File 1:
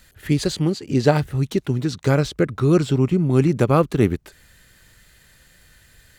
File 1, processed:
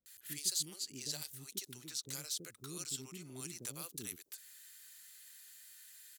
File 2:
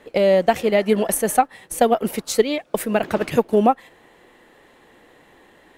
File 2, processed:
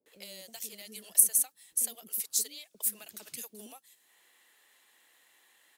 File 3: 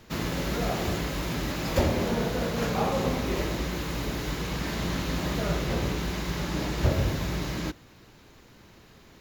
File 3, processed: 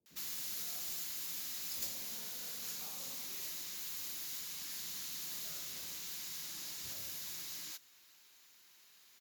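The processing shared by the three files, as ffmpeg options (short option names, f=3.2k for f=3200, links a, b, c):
-filter_complex "[0:a]aderivative,acrossover=split=310|4100[a][b][c];[b]acompressor=threshold=-54dB:ratio=6[d];[a][d][c]amix=inputs=3:normalize=0,acrossover=split=460[e][f];[f]adelay=60[g];[e][g]amix=inputs=2:normalize=0"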